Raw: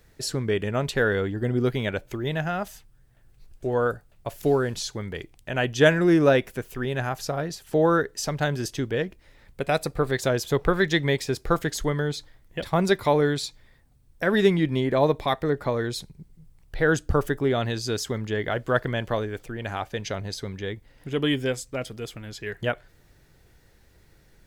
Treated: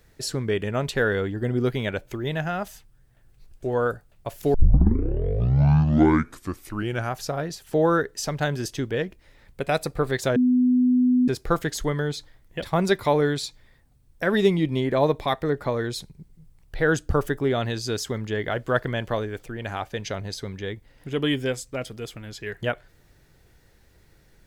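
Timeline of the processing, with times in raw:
0:04.54: tape start 2.66 s
0:10.36–0:11.28: beep over 250 Hz −15.5 dBFS
0:14.37–0:14.77: parametric band 1,600 Hz −14 dB 0.38 octaves

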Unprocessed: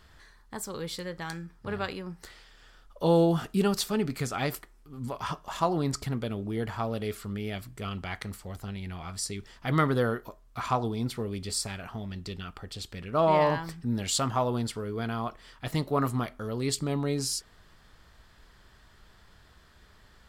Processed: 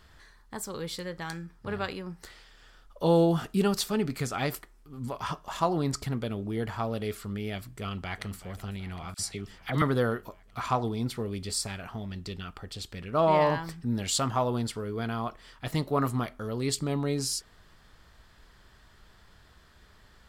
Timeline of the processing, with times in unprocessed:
0:07.75–0:08.38: delay throw 380 ms, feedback 75%, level −15.5 dB
0:09.14–0:09.82: all-pass dispersion lows, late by 48 ms, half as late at 1,500 Hz

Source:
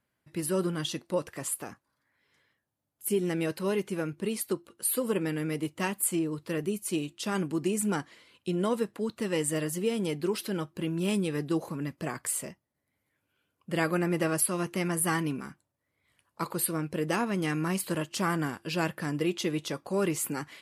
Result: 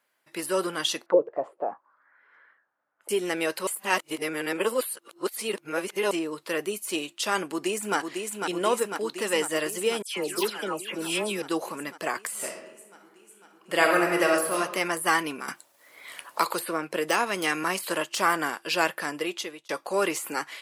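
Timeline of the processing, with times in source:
0:01.06–0:03.09: envelope-controlled low-pass 430–1,500 Hz down, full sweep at −28.5 dBFS
0:03.67–0:06.11: reverse
0:07.41–0:07.97: delay throw 500 ms, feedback 75%, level −5 dB
0:10.02–0:11.42: all-pass dispersion lows, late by 147 ms, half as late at 2,000 Hz
0:12.32–0:14.56: thrown reverb, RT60 0.99 s, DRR 2 dB
0:15.48–0:17.64: multiband upward and downward compressor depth 70%
0:18.77–0:19.69: fade out equal-power
whole clip: de-essing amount 70%; high-pass filter 550 Hz 12 dB per octave; level +8.5 dB

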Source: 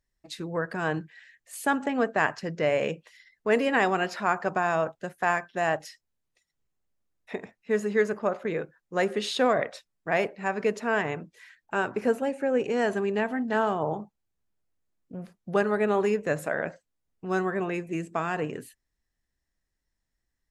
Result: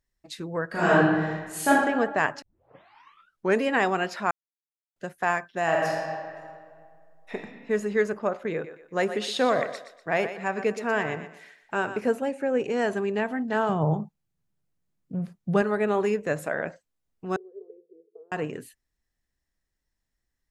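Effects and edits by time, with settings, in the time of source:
0:00.68–0:01.69: thrown reverb, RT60 1.4 s, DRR −9.5 dB
0:02.42: tape start 1.21 s
0:04.31–0:04.96: silence
0:05.63–0:07.34: thrown reverb, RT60 2.1 s, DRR −2.5 dB
0:08.52–0:12.00: feedback echo with a high-pass in the loop 121 ms, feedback 38%, high-pass 280 Hz, level −10.5 dB
0:13.69–0:15.62: parametric band 150 Hz +13.5 dB 0.82 octaves
0:17.36–0:18.32: flat-topped band-pass 440 Hz, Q 7.8

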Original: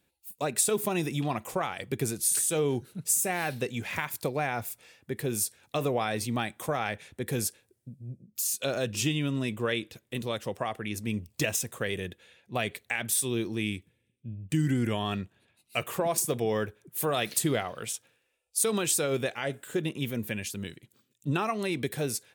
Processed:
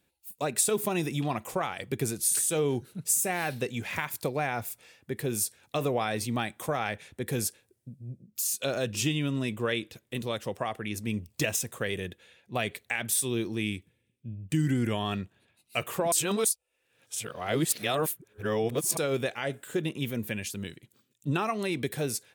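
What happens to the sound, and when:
0:16.12–0:18.97: reverse

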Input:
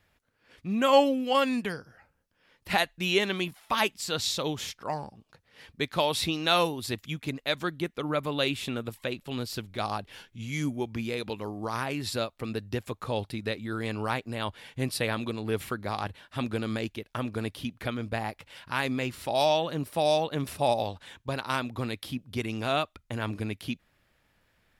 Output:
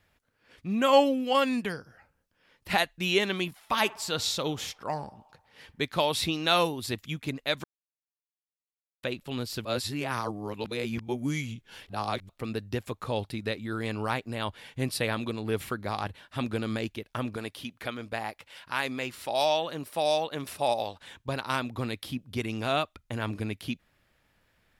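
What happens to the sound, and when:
0:03.57–0:05.86: feedback echo with a band-pass in the loop 61 ms, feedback 75%, level −20 dB
0:07.64–0:09.03: silence
0:09.65–0:12.29: reverse
0:17.36–0:21.01: low-shelf EQ 250 Hz −11 dB

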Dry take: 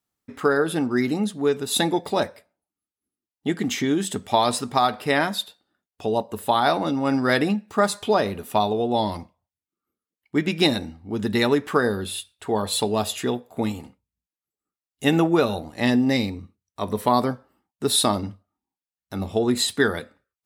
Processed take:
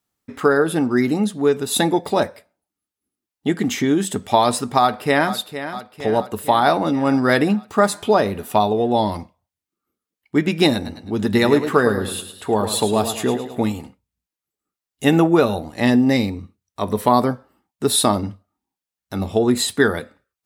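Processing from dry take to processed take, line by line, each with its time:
0:04.80–0:05.34: delay throw 460 ms, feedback 65%, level −11.5 dB
0:10.74–0:13.65: feedback echo with a swinging delay time 107 ms, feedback 40%, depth 74 cents, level −9.5 dB
whole clip: dynamic equaliser 3,900 Hz, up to −4 dB, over −38 dBFS, Q 0.74; level +4.5 dB

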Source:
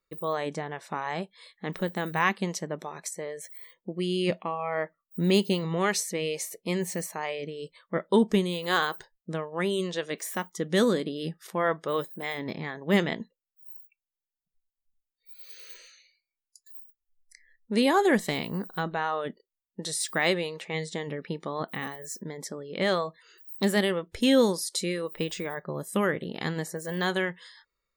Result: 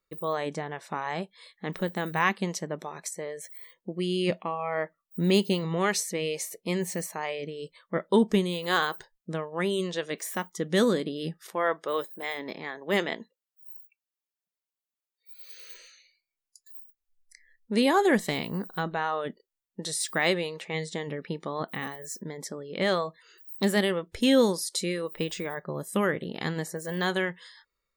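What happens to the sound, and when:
0:11.52–0:15.71: high-pass filter 310 Hz

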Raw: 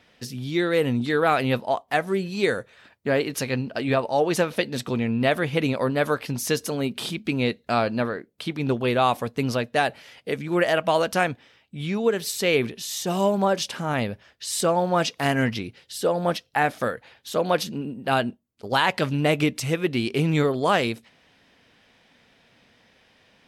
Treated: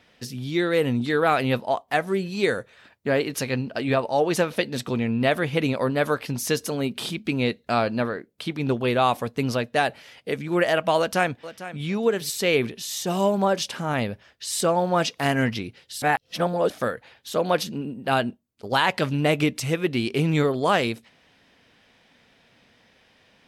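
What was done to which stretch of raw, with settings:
0:10.98–0:11.84: delay throw 450 ms, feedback 15%, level −14 dB
0:16.02–0:16.70: reverse

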